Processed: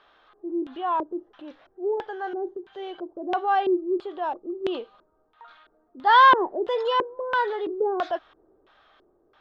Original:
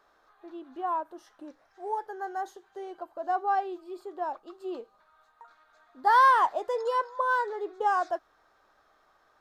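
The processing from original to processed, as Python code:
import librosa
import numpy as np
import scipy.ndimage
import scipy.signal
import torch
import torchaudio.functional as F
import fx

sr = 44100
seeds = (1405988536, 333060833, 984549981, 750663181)

y = fx.filter_lfo_lowpass(x, sr, shape='square', hz=1.5, low_hz=370.0, high_hz=3200.0, q=4.1)
y = fx.transient(y, sr, attack_db=-3, sustain_db=3)
y = y * librosa.db_to_amplitude(4.5)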